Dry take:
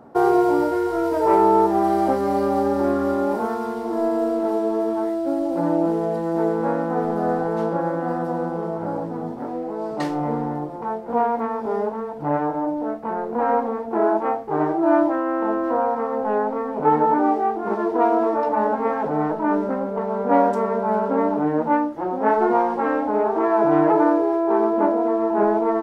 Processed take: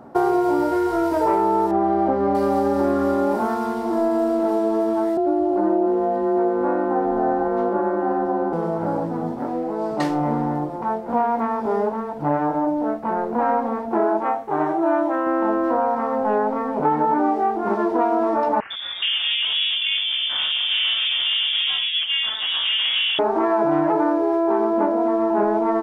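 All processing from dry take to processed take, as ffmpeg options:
-filter_complex "[0:a]asettb=1/sr,asplit=3[a][b][c];[a]atrim=end=1.714[d];[b]atrim=start=1.71:end=2.35,asetpts=PTS-STARTPTS,afade=t=in:d=0.004:c=qsin,afade=t=out:st=0.636:d=0.004:c=qsin,lowpass=f=2.7k:p=1,aemphasis=mode=reproduction:type=75fm[e];[c]atrim=start=2.346[f];[d][e]acrossfade=d=0.004:c1=hsin:c2=qsin[g];[g][f]acrossfade=d=0.004:c1=qsin:c2=hsin,asettb=1/sr,asplit=3[h][i][j];[h]atrim=end=5.174[k];[i]atrim=start=5.17:end=8.53,asetpts=PTS-STARTPTS,afade=t=in:d=0.004:c=qsin,afade=t=out:st=3.356:d=0.004:c=qsin,lowpass=f=1.2k:p=1,aecho=1:1:2.8:0.43,atrim=end_sample=148176,afreqshift=29[l];[j]atrim=start=8.526[m];[k][l]acrossfade=d=0.004:c1=hsin:c2=qsin[n];[n][m]acrossfade=d=0.004:c1=qsin:c2=hsin,asettb=1/sr,asplit=3[o][p][q];[o]atrim=end=14.244[r];[p]atrim=start=14.24:end=15.27,asetpts=PTS-STARTPTS,afade=t=in:d=0.004:c=qsin,afade=t=out:st=1.026:d=0.004:c=qsin,lowshelf=f=260:g=-9.5,bandreject=f=4.8k:w=6.9[s];[q]atrim=start=15.266[t];[r][s]acrossfade=d=0.004:c1=hsin:c2=qsin[u];[u][t]acrossfade=d=0.004:c1=qsin:c2=hsin,asettb=1/sr,asplit=3[v][w][x];[v]atrim=end=18.604[y];[w]atrim=start=18.6:end=23.19,asetpts=PTS-STARTPTS,afade=t=in:d=0.004:c=qsin,afade=t=out:st=4.586:d=0.004:c=qsin,asoftclip=type=hard:threshold=-21dB,acrossover=split=310|1900[z][aa][ab];[z]adelay=100[ac];[aa]adelay=420[ad];[ac][ad][ab]amix=inputs=3:normalize=0,atrim=end_sample=202419,lowpass=f=3.1k:t=q:w=0.5098,lowpass=f=3.1k:t=q:w=0.6013,lowpass=f=3.1k:t=q:w=0.9,lowpass=f=3.1k:t=q:w=2.563,afreqshift=-3700[ae];[x]atrim=start=23.186[af];[y][ae]acrossfade=d=0.004:c1=hsin:c2=qsin[ag];[ag][af]acrossfade=d=0.004:c1=qsin:c2=hsin,bandreject=f=460:w=12,acompressor=threshold=-19dB:ratio=6,volume=3.5dB"

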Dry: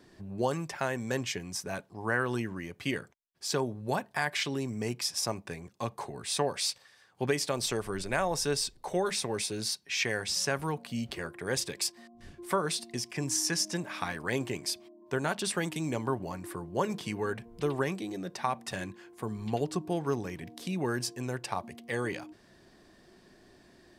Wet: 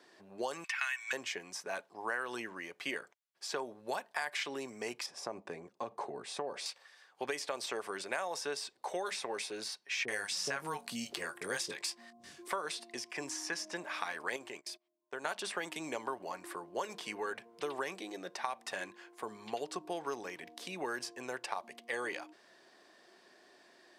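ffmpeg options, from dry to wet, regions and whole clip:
-filter_complex "[0:a]asettb=1/sr,asplit=3[a][b][c];[a]atrim=end=0.644[d];[b]atrim=start=0.64:end=1.13,asetpts=PTS-STARTPTS,afade=t=in:d=0.004:c=qsin,afade=t=out:st=0.486:d=0.004:c=qsin,highpass=f=1.2k:w=0.5412,highpass=f=1.2k:w=1.3066,equalizer=f=2.5k:w=1.2:g=13.5,aecho=1:1:2.7:0.36,atrim=end_sample=21609[e];[c]atrim=start=1.126[f];[d][e]acrossfade=d=0.004:c1=hsin:c2=qsin[g];[g][f]acrossfade=d=0.004:c1=qsin:c2=hsin,asettb=1/sr,asplit=3[h][i][j];[h]atrim=end=5.064[k];[i]atrim=start=5.06:end=6.66,asetpts=PTS-STARTPTS,afade=t=in:d=0.004:c=qsin,afade=t=out:st=1.596:d=0.004:c=qsin,lowpass=11k,tiltshelf=f=860:g=8.5,acompressor=threshold=-28dB:ratio=3:attack=3.2:release=140:knee=1:detection=peak[l];[j]atrim=start=6.656[m];[k][l]acrossfade=d=0.004:c1=hsin:c2=qsin[n];[n][m]acrossfade=d=0.004:c1=qsin:c2=hsin,asettb=1/sr,asplit=3[o][p][q];[o]atrim=end=10.054[r];[p]atrim=start=10.05:end=12.48,asetpts=PTS-STARTPTS,afade=t=in:d=0.004:c=qsin,afade=t=out:st=2.426:d=0.004:c=qsin,bass=f=250:g=9,treble=f=4k:g=12,asplit=2[s][t];[t]adelay=21,volume=-12.5dB[u];[s][u]amix=inputs=2:normalize=0,atrim=end_sample=107163,acrossover=split=580[v][w];[w]adelay=30[x];[v][x]amix=inputs=2:normalize=0,atrim=end_sample=107163[y];[q]atrim=start=12.476[z];[r][y]acrossfade=d=0.004:c1=hsin:c2=qsin[aa];[aa][z]acrossfade=d=0.004:c1=qsin:c2=hsin,asettb=1/sr,asplit=3[ab][ac][ad];[ab]atrim=end=14.364[ae];[ac]atrim=start=14.36:end=15.25,asetpts=PTS-STARTPTS,afade=t=in:d=0.004:c=qsin,afade=t=out:st=0.886:d=0.004:c=qsin,agate=range=-26dB:threshold=-42dB:ratio=16:release=100:detection=peak,acompressor=threshold=-46dB:ratio=1.5:attack=3.2:release=140:knee=1:detection=peak[af];[ad]atrim=start=15.246[ag];[ae][af]acrossfade=d=0.004:c1=hsin:c2=qsin[ah];[ah][ag]acrossfade=d=0.004:c1=qsin:c2=hsin,highpass=520,highshelf=f=11k:g=-11,acrossover=split=2800|5600[ai][aj][ak];[ai]acompressor=threshold=-35dB:ratio=4[al];[aj]acompressor=threshold=-50dB:ratio=4[am];[ak]acompressor=threshold=-48dB:ratio=4[an];[al][am][an]amix=inputs=3:normalize=0,volume=1dB"

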